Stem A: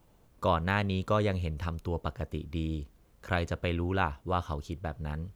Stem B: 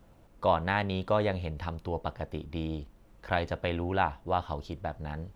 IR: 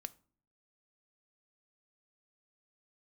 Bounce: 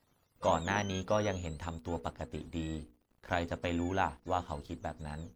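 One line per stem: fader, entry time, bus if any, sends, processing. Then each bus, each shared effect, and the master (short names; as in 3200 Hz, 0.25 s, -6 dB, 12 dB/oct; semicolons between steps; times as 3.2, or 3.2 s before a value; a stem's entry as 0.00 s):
-6.5 dB, 0.00 s, no send, spectrum mirrored in octaves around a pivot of 780 Hz; auto duck -14 dB, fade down 1.85 s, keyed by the second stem
-4.0 dB, 0.00 s, no send, bell 250 Hz +9.5 dB 0.21 oct; crossover distortion -53 dBFS; notches 60/120/180/240/300/360/420/480 Hz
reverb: off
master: dry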